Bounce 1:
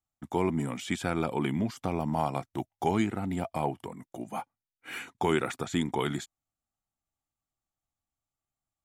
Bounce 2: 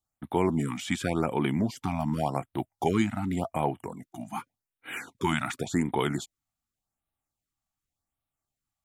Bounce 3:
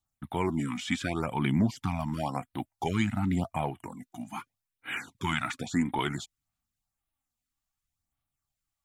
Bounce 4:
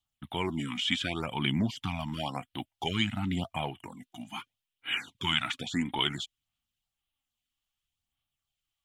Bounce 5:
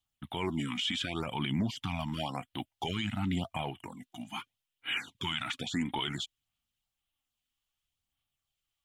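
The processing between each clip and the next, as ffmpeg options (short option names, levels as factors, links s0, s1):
-af "afftfilt=real='re*(1-between(b*sr/1024,400*pow(6200/400,0.5+0.5*sin(2*PI*0.88*pts/sr))/1.41,400*pow(6200/400,0.5+0.5*sin(2*PI*0.88*pts/sr))*1.41))':imag='im*(1-between(b*sr/1024,400*pow(6200/400,0.5+0.5*sin(2*PI*0.88*pts/sr))/1.41,400*pow(6200/400,0.5+0.5*sin(2*PI*0.88*pts/sr))*1.41))':win_size=1024:overlap=0.75,volume=1.33"
-filter_complex "[0:a]acrossover=split=7300[s0][s1];[s1]acompressor=threshold=0.00158:ratio=4:attack=1:release=60[s2];[s0][s2]amix=inputs=2:normalize=0,equalizer=f=460:t=o:w=1.3:g=-8.5,aphaser=in_gain=1:out_gain=1:delay=4.1:decay=0.4:speed=0.61:type=sinusoidal"
-af "equalizer=f=3100:w=2.1:g=15,volume=0.668"
-af "alimiter=limit=0.075:level=0:latency=1:release=28"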